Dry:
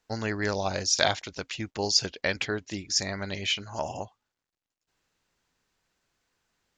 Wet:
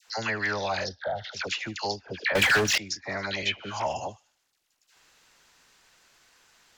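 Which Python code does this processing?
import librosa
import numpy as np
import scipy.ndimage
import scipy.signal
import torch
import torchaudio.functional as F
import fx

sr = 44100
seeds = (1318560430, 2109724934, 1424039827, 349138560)

y = fx.echo_wet_highpass(x, sr, ms=76, feedback_pct=41, hz=2200.0, wet_db=-16.0)
y = fx.leveller(y, sr, passes=1, at=(3.49, 3.93))
y = fx.low_shelf(y, sr, hz=490.0, db=-11.5)
y = fx.env_lowpass_down(y, sr, base_hz=600.0, full_db=-22.0)
y = fx.fixed_phaser(y, sr, hz=1600.0, stages=8, at=(0.84, 1.33))
y = fx.dispersion(y, sr, late='lows', ms=80.0, hz=1000.0)
y = fx.leveller(y, sr, passes=5, at=(2.35, 2.78))
y = fx.dynamic_eq(y, sr, hz=330.0, q=1.4, threshold_db=-43.0, ratio=4.0, max_db=-5)
y = fx.band_squash(y, sr, depth_pct=40)
y = y * 10.0 ** (5.5 / 20.0)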